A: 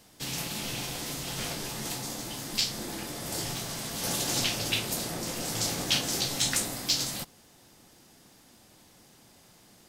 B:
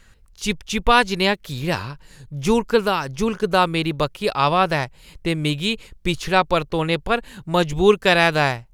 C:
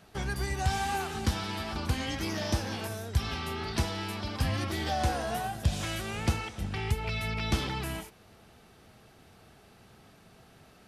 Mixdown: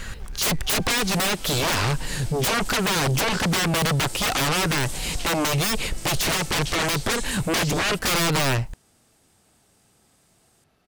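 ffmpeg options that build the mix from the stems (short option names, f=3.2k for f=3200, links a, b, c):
-filter_complex "[0:a]equalizer=f=8.5k:t=o:w=0.55:g=10,adelay=750,volume=-9dB[a];[1:a]acompressor=threshold=-21dB:ratio=12,aeval=exprs='0.141*sin(PI/2*5.62*val(0)/0.141)':c=same,volume=-0.5dB[b];[2:a]aeval=exprs='(tanh(79.4*val(0)+0.6)-tanh(0.6))/79.4':c=same,adelay=50,volume=-6dB[c];[a][b][c]amix=inputs=3:normalize=0,alimiter=limit=-18dB:level=0:latency=1:release=30"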